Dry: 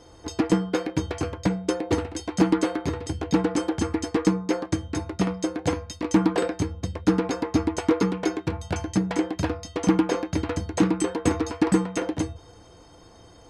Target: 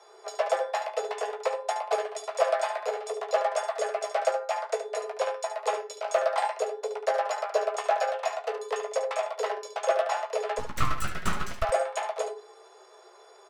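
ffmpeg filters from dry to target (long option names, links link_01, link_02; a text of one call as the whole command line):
ffmpeg -i in.wav -filter_complex "[0:a]afreqshift=340,flanger=delay=3.8:depth=6.5:regen=-73:speed=0.56:shape=sinusoidal,asplit=3[link_01][link_02][link_03];[link_01]afade=type=out:start_time=10.58:duration=0.02[link_04];[link_02]aeval=exprs='abs(val(0))':channel_layout=same,afade=type=in:start_time=10.58:duration=0.02,afade=type=out:start_time=11.62:duration=0.02[link_05];[link_03]afade=type=in:start_time=11.62:duration=0.02[link_06];[link_04][link_05][link_06]amix=inputs=3:normalize=0,asplit=2[link_07][link_08];[link_08]aecho=0:1:16|72:0.422|0.335[link_09];[link_07][link_09]amix=inputs=2:normalize=0" out.wav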